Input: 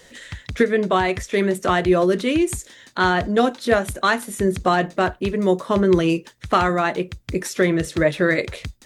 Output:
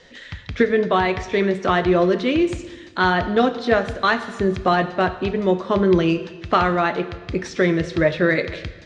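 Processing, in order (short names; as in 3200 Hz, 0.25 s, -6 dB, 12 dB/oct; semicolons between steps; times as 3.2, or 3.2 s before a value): LPF 5300 Hz 24 dB/oct; plate-style reverb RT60 1.4 s, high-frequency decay 0.95×, DRR 10.5 dB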